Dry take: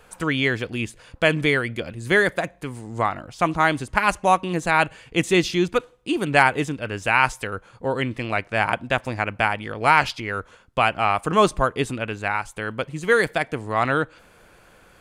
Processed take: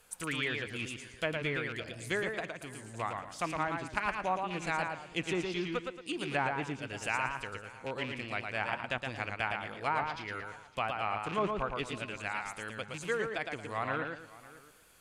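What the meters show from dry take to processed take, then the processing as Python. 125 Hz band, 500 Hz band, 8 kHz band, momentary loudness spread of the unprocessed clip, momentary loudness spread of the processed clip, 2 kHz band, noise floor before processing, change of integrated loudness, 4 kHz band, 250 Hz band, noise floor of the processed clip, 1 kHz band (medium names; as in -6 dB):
-13.5 dB, -13.5 dB, -10.0 dB, 11 LU, 8 LU, -13.0 dB, -53 dBFS, -13.0 dB, -11.0 dB, -14.0 dB, -55 dBFS, -13.5 dB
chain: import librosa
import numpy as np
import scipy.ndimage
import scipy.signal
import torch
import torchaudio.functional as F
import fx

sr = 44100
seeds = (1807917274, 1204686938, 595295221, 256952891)

p1 = fx.rattle_buzz(x, sr, strikes_db=-29.0, level_db=-21.0)
p2 = fx.env_lowpass_down(p1, sr, base_hz=1200.0, full_db=-13.5)
p3 = librosa.effects.preemphasis(p2, coef=0.8, zi=[0.0])
p4 = p3 + fx.echo_single(p3, sr, ms=558, db=-19.5, dry=0)
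p5 = fx.echo_warbled(p4, sr, ms=114, feedback_pct=31, rate_hz=2.8, cents=103, wet_db=-4.5)
y = p5 * 10.0 ** (-1.5 / 20.0)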